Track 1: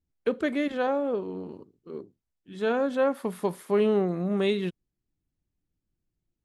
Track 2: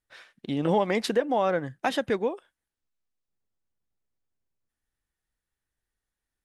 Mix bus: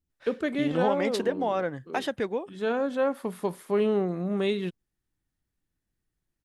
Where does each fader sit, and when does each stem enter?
-1.5, -3.0 dB; 0.00, 0.10 s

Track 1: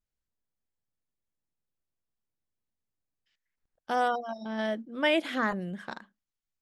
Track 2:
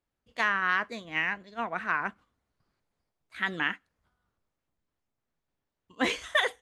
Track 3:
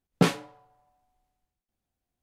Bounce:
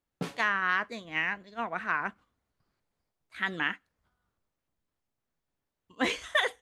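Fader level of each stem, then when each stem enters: off, -1.0 dB, -14.5 dB; off, 0.00 s, 0.00 s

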